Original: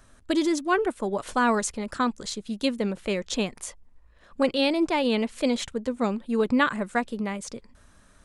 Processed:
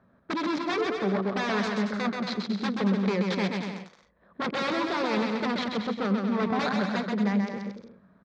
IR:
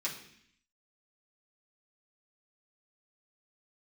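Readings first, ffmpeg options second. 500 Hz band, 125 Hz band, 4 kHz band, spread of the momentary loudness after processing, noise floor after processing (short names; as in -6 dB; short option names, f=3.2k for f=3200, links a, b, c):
-3.0 dB, +6.0 dB, -2.5 dB, 7 LU, -63 dBFS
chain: -af "highshelf=f=2.1k:g=12,adynamicsmooth=sensitivity=2:basefreq=850,aeval=exprs='0.075*(abs(mod(val(0)/0.075+3,4)-2)-1)':c=same,highpass=150,equalizer=f=190:t=q:w=4:g=10,equalizer=f=290:t=q:w=4:g=-5,equalizer=f=2.9k:t=q:w=4:g=-8,lowpass=f=4.5k:w=0.5412,lowpass=f=4.5k:w=1.3066,aecho=1:1:130|227.5|300.6|355.5|396.6:0.631|0.398|0.251|0.158|0.1"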